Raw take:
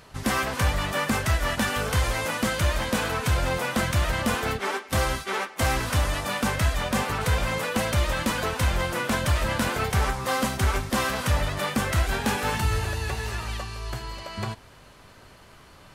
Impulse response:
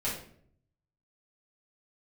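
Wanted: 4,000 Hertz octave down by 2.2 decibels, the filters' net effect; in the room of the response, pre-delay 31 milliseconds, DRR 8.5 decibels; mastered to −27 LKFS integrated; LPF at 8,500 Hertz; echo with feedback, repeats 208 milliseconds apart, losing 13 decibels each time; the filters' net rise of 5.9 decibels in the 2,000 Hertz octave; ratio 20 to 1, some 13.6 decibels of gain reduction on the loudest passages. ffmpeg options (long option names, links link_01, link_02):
-filter_complex "[0:a]lowpass=8500,equalizer=frequency=2000:width_type=o:gain=9,equalizer=frequency=4000:width_type=o:gain=-7,acompressor=threshold=-31dB:ratio=20,aecho=1:1:208|416|624:0.224|0.0493|0.0108,asplit=2[link_01][link_02];[1:a]atrim=start_sample=2205,adelay=31[link_03];[link_02][link_03]afir=irnorm=-1:irlink=0,volume=-14.5dB[link_04];[link_01][link_04]amix=inputs=2:normalize=0,volume=7dB"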